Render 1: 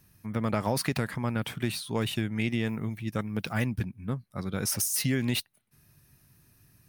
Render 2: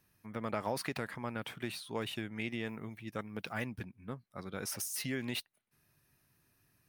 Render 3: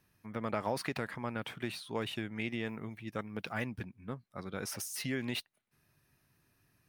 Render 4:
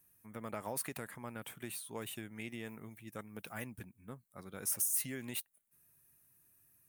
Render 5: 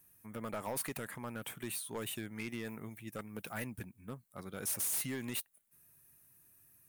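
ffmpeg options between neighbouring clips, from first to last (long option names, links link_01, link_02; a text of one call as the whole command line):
ffmpeg -i in.wav -af "bass=frequency=250:gain=-9,treble=frequency=4000:gain=-5,volume=-5.5dB" out.wav
ffmpeg -i in.wav -af "highshelf=frequency=7400:gain=-6,volume=1.5dB" out.wav
ffmpeg -i in.wav -af "aexciter=amount=4.7:drive=8.2:freq=6900,volume=-7.5dB" out.wav
ffmpeg -i in.wav -af "asoftclip=type=hard:threshold=-36.5dB,volume=4dB" out.wav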